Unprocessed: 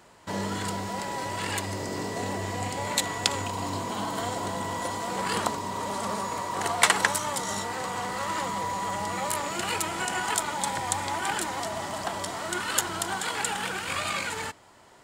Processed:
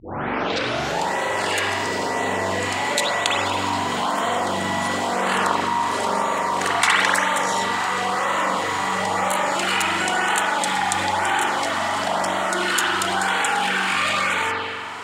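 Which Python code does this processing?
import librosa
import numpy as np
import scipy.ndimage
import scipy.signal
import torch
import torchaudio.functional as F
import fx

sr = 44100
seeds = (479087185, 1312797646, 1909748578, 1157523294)

y = fx.tape_start_head(x, sr, length_s=1.07)
y = fx.weighting(y, sr, curve='A')
y = fx.rev_spring(y, sr, rt60_s=1.1, pass_ms=(42,), chirp_ms=65, drr_db=-4.5)
y = fx.filter_lfo_notch(y, sr, shape='sine', hz=0.99, low_hz=490.0, high_hz=5200.0, q=2.4)
y = fx.low_shelf(y, sr, hz=250.0, db=5.0)
y = fx.env_flatten(y, sr, amount_pct=50)
y = y * 10.0 ** (-1.0 / 20.0)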